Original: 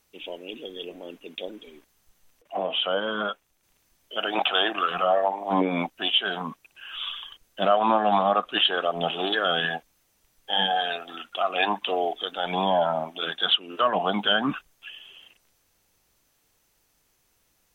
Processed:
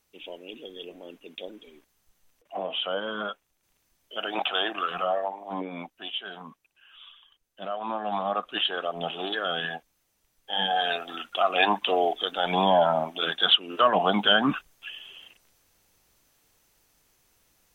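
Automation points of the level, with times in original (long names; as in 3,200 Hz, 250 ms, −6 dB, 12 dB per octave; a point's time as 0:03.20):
0:05.03 −4 dB
0:05.64 −11 dB
0:06.47 −11 dB
0:07.20 −18 dB
0:08.42 −5 dB
0:10.51 −5 dB
0:10.91 +2 dB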